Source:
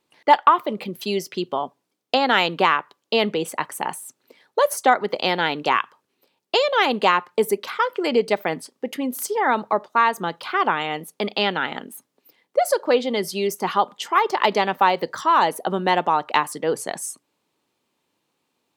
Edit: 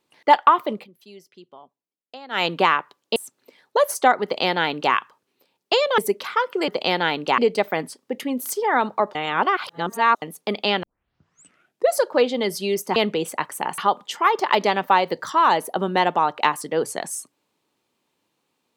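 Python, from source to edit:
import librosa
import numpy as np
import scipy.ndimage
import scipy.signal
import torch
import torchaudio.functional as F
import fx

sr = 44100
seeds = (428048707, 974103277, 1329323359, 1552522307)

y = fx.edit(x, sr, fx.fade_down_up(start_s=0.72, length_s=1.73, db=-20.5, fade_s=0.15),
    fx.move(start_s=3.16, length_s=0.82, to_s=13.69),
    fx.duplicate(start_s=5.06, length_s=0.7, to_s=8.11),
    fx.cut(start_s=6.8, length_s=0.61),
    fx.reverse_span(start_s=9.88, length_s=1.07),
    fx.tape_start(start_s=11.56, length_s=1.12), tone=tone)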